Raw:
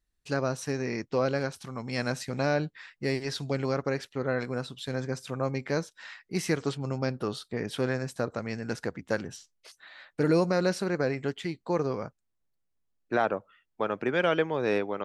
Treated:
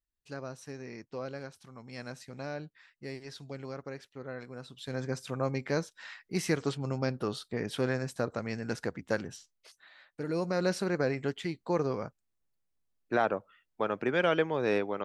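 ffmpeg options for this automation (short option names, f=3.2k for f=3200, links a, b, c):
-af "volume=8.5dB,afade=t=in:st=4.57:d=0.55:silence=0.298538,afade=t=out:st=9.11:d=1.16:silence=0.316228,afade=t=in:st=10.27:d=0.48:silence=0.316228"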